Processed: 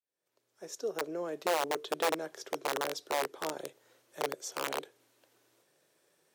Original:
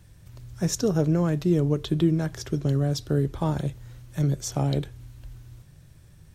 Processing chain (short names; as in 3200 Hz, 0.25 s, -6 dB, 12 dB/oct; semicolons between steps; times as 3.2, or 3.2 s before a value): opening faded in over 1.59 s; wrapped overs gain 15.5 dB; ladder high-pass 360 Hz, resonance 40%